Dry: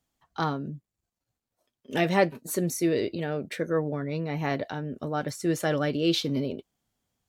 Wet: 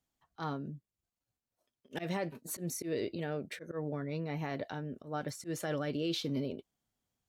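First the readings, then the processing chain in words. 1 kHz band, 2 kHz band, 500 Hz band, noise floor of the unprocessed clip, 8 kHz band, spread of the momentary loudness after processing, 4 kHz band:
-10.5 dB, -11.0 dB, -10.0 dB, under -85 dBFS, -6.5 dB, 8 LU, -9.0 dB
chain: slow attack 121 ms; peak limiter -18.5 dBFS, peak gain reduction 10 dB; trim -6.5 dB

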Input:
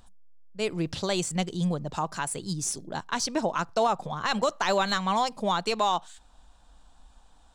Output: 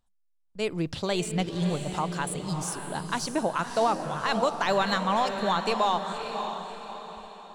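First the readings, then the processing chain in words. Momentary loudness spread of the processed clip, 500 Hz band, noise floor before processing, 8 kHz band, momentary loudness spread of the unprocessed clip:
12 LU, +1.0 dB, -57 dBFS, -3.5 dB, 6 LU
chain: gate with hold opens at -42 dBFS; dynamic bell 6.2 kHz, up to -7 dB, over -49 dBFS, Q 1.5; echo that smears into a reverb 587 ms, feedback 44%, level -7 dB

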